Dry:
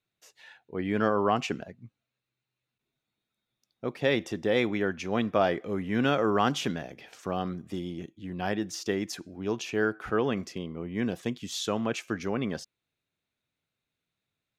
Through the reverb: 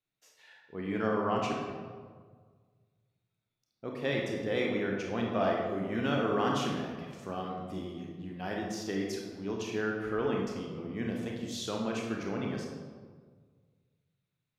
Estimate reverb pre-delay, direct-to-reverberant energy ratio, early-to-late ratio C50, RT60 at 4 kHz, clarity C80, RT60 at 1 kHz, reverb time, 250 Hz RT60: 26 ms, -1.0 dB, 1.5 dB, 0.95 s, 4.0 dB, 1.6 s, 1.7 s, 1.7 s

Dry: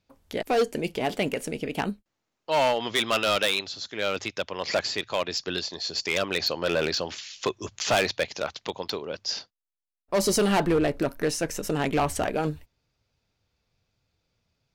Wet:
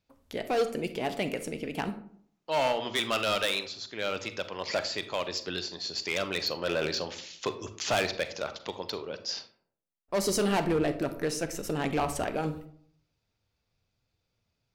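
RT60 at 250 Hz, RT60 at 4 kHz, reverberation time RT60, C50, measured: 0.65 s, 0.30 s, 0.60 s, 12.0 dB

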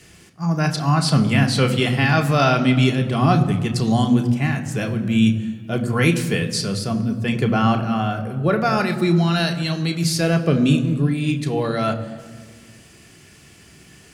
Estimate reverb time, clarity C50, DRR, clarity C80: 1.7 s, 11.5 dB, 3.0 dB, 12.5 dB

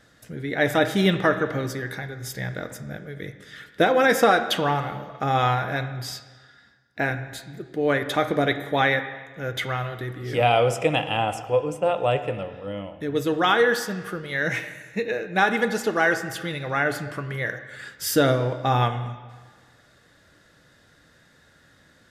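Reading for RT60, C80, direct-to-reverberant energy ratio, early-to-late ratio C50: 1.5 s, 12.5 dB, 9.5 dB, 11.0 dB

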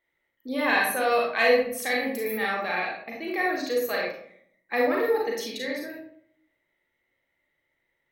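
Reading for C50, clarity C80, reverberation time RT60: 1.5 dB, 6.5 dB, 0.65 s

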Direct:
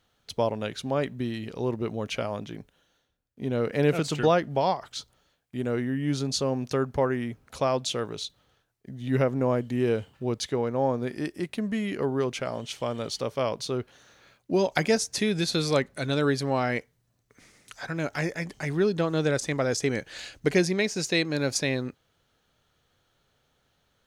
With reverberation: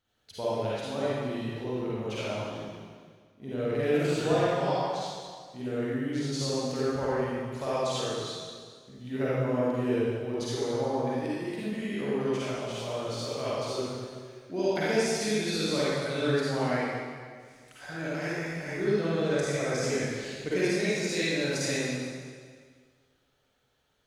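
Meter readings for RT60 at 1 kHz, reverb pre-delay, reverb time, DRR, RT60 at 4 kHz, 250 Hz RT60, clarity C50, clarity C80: 1.8 s, 33 ms, 1.8 s, -9.5 dB, 1.7 s, 1.8 s, -7.0 dB, -2.5 dB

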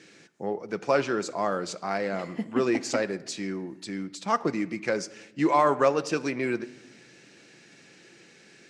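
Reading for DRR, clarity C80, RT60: 11.5 dB, 20.5 dB, 1.0 s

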